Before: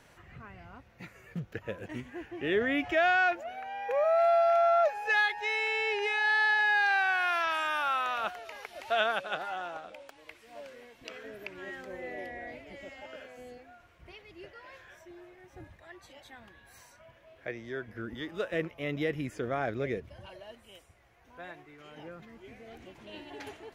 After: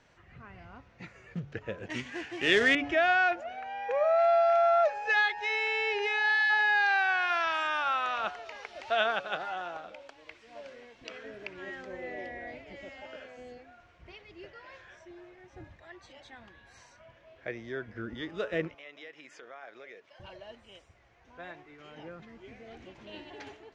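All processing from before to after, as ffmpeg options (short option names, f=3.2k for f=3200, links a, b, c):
-filter_complex "[0:a]asettb=1/sr,asplit=3[a][b][c];[a]atrim=end=1.904[d];[b]atrim=start=1.9:end=2.75,asetpts=PTS-STARTPTS,afade=t=in:d=0.004:c=qsin,afade=t=out:st=0.846:d=0.004:c=qsin,highpass=90,equalizer=f=5.1k:w=0.31:g=13.5,acrusher=bits=3:mode=log:mix=0:aa=0.000001[e];[c]atrim=start=2.746[f];[d][e]acrossfade=d=0.004:c1=hsin:c2=qsin[g];[g][f]acrossfade=d=0.004:c1=qsin:c2=hsin,asettb=1/sr,asplit=3[h][i][j];[h]atrim=end=18.754[k];[i]atrim=start=18.75:end=20.2,asetpts=PTS-STARTPTS,afade=t=in:d=0.004:c=qsin,afade=t=out:st=1.446:d=0.004:c=qsin,highpass=720,acompressor=threshold=-49dB:ratio=2.5:attack=3.2:release=140:knee=1:detection=peak[l];[j]atrim=start=20.196[m];[k][l]acrossfade=d=0.004:c1=hsin:c2=qsin[n];[n][m]acrossfade=d=0.004:c1=qsin:c2=hsin,dynaudnorm=f=120:g=7:m=5dB,lowpass=f=6.7k:w=0.5412,lowpass=f=6.7k:w=1.3066,bandreject=f=143:t=h:w=4,bandreject=f=286:t=h:w=4,bandreject=f=429:t=h:w=4,bandreject=f=572:t=h:w=4,bandreject=f=715:t=h:w=4,bandreject=f=858:t=h:w=4,bandreject=f=1.001k:t=h:w=4,bandreject=f=1.144k:t=h:w=4,bandreject=f=1.287k:t=h:w=4,bandreject=f=1.43k:t=h:w=4,volume=-4.5dB"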